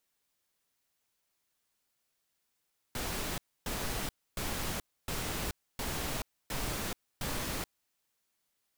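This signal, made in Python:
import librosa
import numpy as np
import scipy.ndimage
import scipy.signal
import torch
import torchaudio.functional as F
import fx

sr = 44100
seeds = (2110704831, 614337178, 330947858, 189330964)

y = fx.noise_burst(sr, seeds[0], colour='pink', on_s=0.43, off_s=0.28, bursts=7, level_db=-35.5)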